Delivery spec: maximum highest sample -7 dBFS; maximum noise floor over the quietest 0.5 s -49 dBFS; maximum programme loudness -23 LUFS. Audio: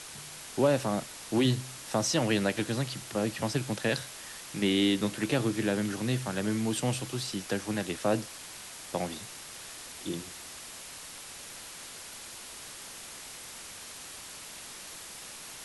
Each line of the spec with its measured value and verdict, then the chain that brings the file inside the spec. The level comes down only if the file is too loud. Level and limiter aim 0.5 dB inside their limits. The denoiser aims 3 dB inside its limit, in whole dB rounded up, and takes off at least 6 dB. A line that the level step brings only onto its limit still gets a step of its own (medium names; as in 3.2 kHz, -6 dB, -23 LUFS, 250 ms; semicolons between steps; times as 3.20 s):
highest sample -13.5 dBFS: pass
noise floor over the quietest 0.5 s -45 dBFS: fail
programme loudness -32.5 LUFS: pass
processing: noise reduction 7 dB, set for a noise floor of -45 dBFS